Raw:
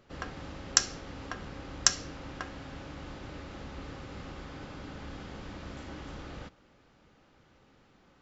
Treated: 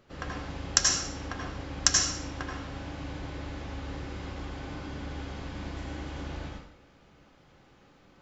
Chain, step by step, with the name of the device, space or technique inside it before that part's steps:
bathroom (convolution reverb RT60 0.65 s, pre-delay 75 ms, DRR −1 dB)

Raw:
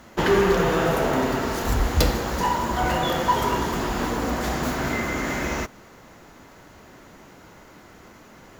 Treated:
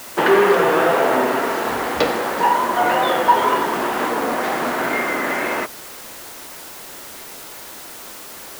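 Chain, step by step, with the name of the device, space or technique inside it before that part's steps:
wax cylinder (band-pass filter 370–2,800 Hz; tape wow and flutter; white noise bed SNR 17 dB)
level +7.5 dB

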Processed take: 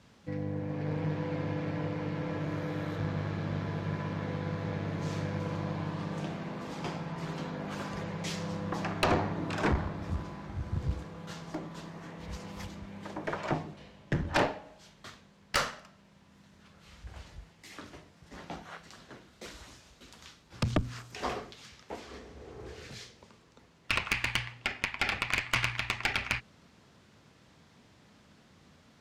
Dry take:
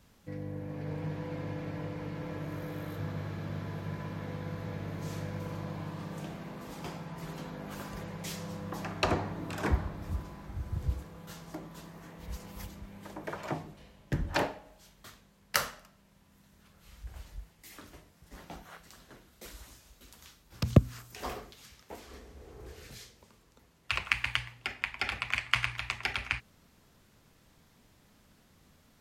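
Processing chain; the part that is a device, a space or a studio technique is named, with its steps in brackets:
valve radio (band-pass filter 82–6,000 Hz; tube saturation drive 24 dB, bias 0.55; saturating transformer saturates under 110 Hz)
level +7 dB

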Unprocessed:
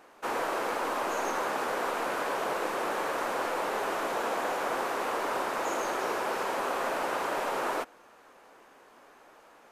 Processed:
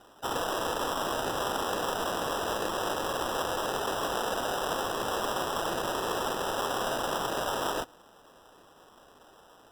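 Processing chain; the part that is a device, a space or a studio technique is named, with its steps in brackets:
crushed at another speed (tape speed factor 0.5×; decimation without filtering 40×; tape speed factor 2×)

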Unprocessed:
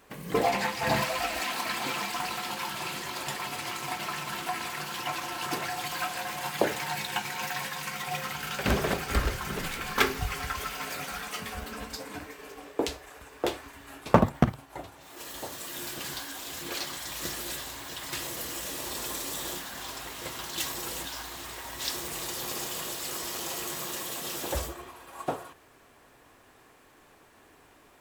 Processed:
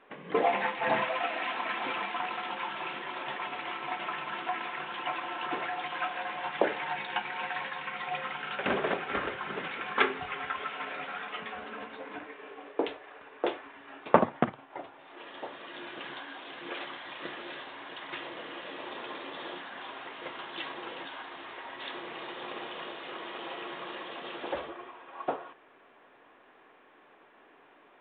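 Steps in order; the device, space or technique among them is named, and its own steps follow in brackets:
telephone (band-pass filter 290–3,100 Hz; mu-law 64 kbit/s 8,000 Hz)

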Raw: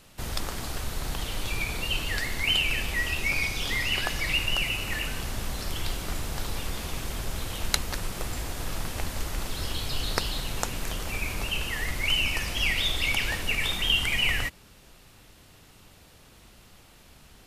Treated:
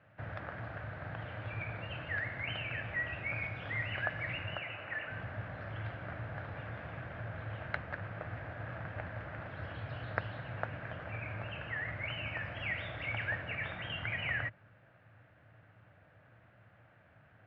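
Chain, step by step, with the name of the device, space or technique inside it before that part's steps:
bass cabinet (loudspeaker in its box 88–2,100 Hz, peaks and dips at 110 Hz +10 dB, 230 Hz −7 dB, 390 Hz −9 dB, 620 Hz +7 dB, 990 Hz −4 dB, 1,600 Hz +8 dB)
0:04.59–0:05.10: bass and treble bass −11 dB, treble −5 dB
level −7 dB

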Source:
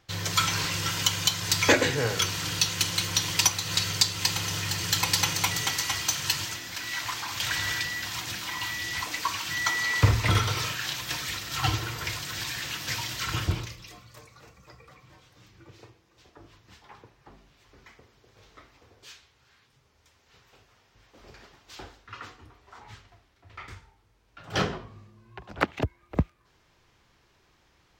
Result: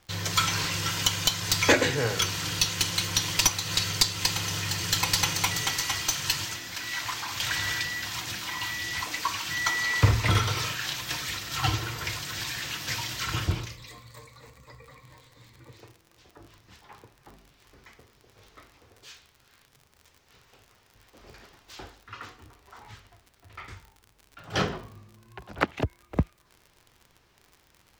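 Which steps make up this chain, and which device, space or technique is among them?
0:13.77–0:15.77: EQ curve with evenly spaced ripples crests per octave 1, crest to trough 9 dB
record under a worn stylus (stylus tracing distortion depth 0.023 ms; surface crackle 54 per second −40 dBFS; pink noise bed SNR 41 dB)

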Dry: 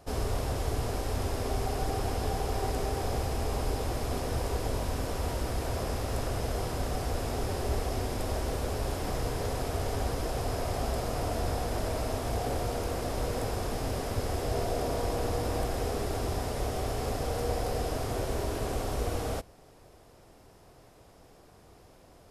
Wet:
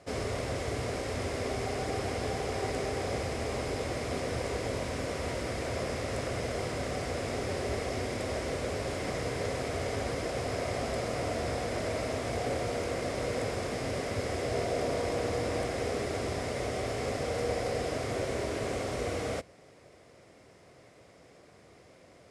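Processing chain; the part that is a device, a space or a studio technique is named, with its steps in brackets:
car door speaker (loudspeaker in its box 100–9,400 Hz, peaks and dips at 550 Hz +4 dB, 860 Hz −6 dB, 2,100 Hz +9 dB)

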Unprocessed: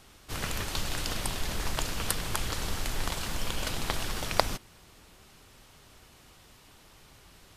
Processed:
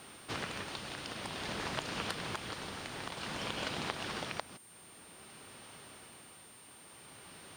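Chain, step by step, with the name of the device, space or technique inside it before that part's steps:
medium wave at night (band-pass filter 150–4,300 Hz; downward compressor 6 to 1, threshold −39 dBFS, peak gain reduction 20 dB; amplitude tremolo 0.53 Hz, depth 48%; steady tone 9,000 Hz −61 dBFS; white noise bed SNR 23 dB)
level +5 dB

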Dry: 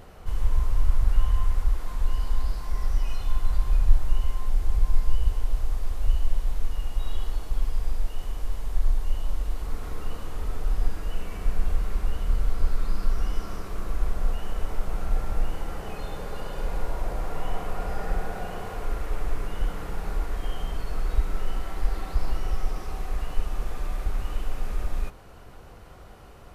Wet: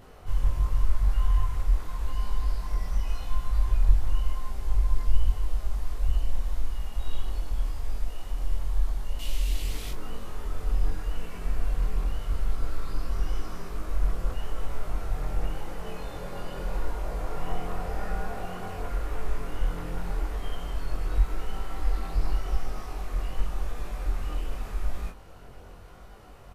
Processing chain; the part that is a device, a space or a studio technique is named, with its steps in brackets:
0:09.19–0:09.91: high shelf with overshoot 1,900 Hz +11 dB, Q 1.5
double-tracked vocal (double-tracking delay 23 ms −4 dB; chorus effect 0.88 Hz, delay 18 ms, depth 5.4 ms)

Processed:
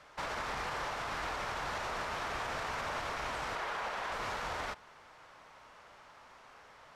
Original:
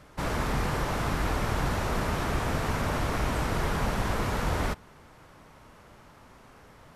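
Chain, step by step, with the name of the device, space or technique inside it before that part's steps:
0:03.55–0:04.12: bass and treble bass −11 dB, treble −5 dB
DJ mixer with the lows and highs turned down (three-way crossover with the lows and the highs turned down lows −16 dB, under 530 Hz, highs −14 dB, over 7,200 Hz; brickwall limiter −29 dBFS, peak gain reduction 7 dB)

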